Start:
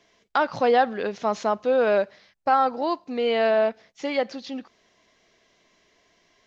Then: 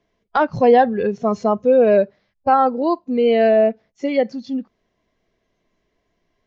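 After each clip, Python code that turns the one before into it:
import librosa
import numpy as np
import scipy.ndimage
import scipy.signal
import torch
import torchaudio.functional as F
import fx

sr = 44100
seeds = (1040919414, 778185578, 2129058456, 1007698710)

y = fx.noise_reduce_blind(x, sr, reduce_db=13)
y = fx.tilt_eq(y, sr, slope=-3.0)
y = F.gain(torch.from_numpy(y), 4.5).numpy()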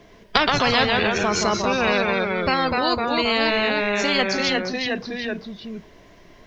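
y = fx.echo_pitch(x, sr, ms=101, semitones=-1, count=3, db_per_echo=-6.0)
y = fx.spectral_comp(y, sr, ratio=4.0)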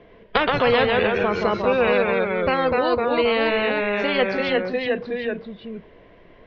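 y = scipy.signal.sosfilt(scipy.signal.butter(4, 3200.0, 'lowpass', fs=sr, output='sos'), x)
y = fx.peak_eq(y, sr, hz=490.0, db=10.0, octaves=0.29)
y = F.gain(torch.from_numpy(y), -1.5).numpy()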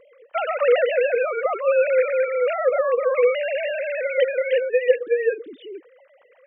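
y = fx.sine_speech(x, sr)
y = fx.wow_flutter(y, sr, seeds[0], rate_hz=2.1, depth_cents=22.0)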